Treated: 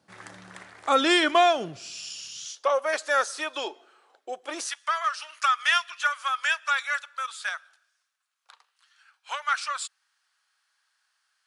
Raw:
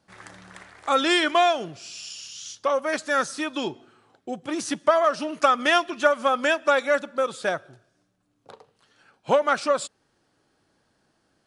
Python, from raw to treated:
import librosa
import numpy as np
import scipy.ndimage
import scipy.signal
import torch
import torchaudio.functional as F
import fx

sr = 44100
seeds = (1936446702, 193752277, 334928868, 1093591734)

y = fx.highpass(x, sr, hz=fx.steps((0.0, 89.0), (2.45, 450.0), (4.67, 1200.0)), slope=24)